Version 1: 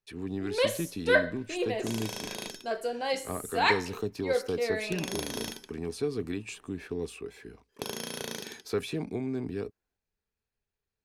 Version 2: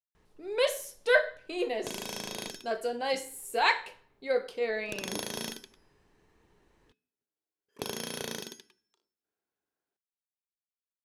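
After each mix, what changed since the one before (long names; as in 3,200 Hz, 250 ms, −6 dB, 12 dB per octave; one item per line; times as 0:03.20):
speech: muted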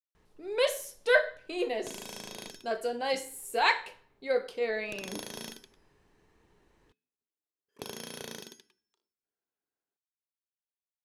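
second sound −5.0 dB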